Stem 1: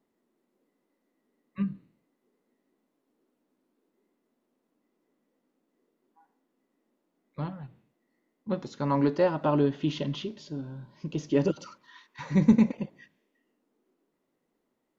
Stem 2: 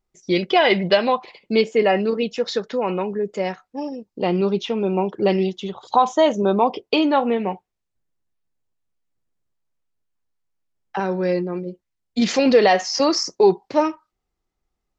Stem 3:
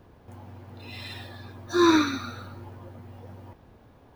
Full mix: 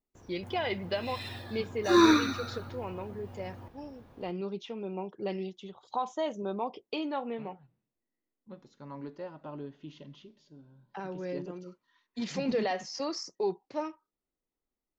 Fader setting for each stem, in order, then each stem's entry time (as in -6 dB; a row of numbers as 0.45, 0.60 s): -17.5, -16.0, -1.5 dB; 0.00, 0.00, 0.15 s